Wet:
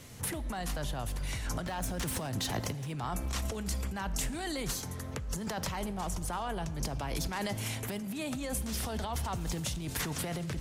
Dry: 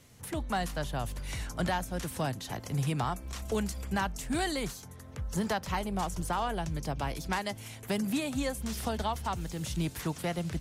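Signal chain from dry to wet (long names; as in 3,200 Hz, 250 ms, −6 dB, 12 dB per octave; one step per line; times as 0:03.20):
0:01.62–0:02.99: phase distortion by the signal itself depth 0.05 ms
brickwall limiter −28.5 dBFS, peak gain reduction 7.5 dB
compressor whose output falls as the input rises −40 dBFS, ratio −1
on a send: convolution reverb RT60 2.0 s, pre-delay 4 ms, DRR 15 dB
on the sum: level +5 dB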